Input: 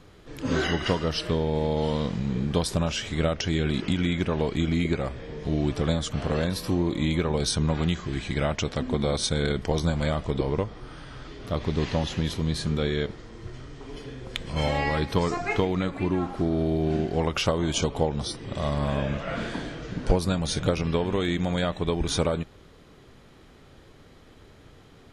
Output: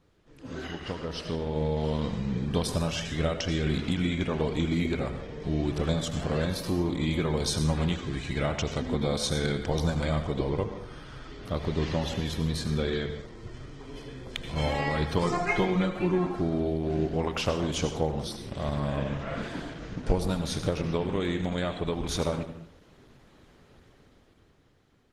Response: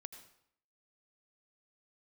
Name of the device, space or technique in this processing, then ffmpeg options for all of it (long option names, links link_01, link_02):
speakerphone in a meeting room: -filter_complex "[0:a]asettb=1/sr,asplit=3[link_01][link_02][link_03];[link_01]atrim=end=15.224[link_04];[link_02]atrim=start=15.22:end=16.26,asetpts=PTS-STARTPTS,afade=type=in:duration=0.004:curve=qsin,afade=type=out:start_time=1.036:duration=0.004:curve=qsin,aecho=1:1:5.6:0.8,atrim=end_sample=45864[link_05];[link_03]atrim=start=16.256[link_06];[link_04][link_05]acrossfade=duration=0.004:curve1=hsin:curve2=qsin[link_07];[link_07][link_06]acrossfade=duration=0.004:curve1=qsin:curve2=hsin[link_08];[1:a]atrim=start_sample=2205[link_09];[link_08][link_09]afir=irnorm=-1:irlink=0,dynaudnorm=framelen=140:gausssize=17:maxgain=10.5dB,volume=-7.5dB" -ar 48000 -c:a libopus -b:a 16k